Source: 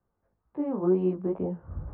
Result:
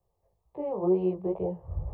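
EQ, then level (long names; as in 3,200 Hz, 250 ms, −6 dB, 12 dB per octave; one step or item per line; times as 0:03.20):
phaser with its sweep stopped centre 610 Hz, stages 4
+4.5 dB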